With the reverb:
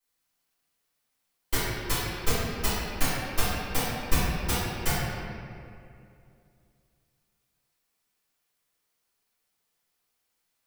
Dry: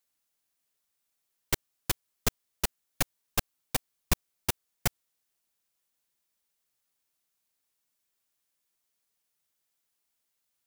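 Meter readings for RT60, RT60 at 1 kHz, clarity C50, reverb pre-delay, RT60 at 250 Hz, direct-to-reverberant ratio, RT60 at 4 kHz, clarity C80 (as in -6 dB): 2.5 s, 2.3 s, -4.0 dB, 3 ms, 2.9 s, -15.5 dB, 1.4 s, -1.5 dB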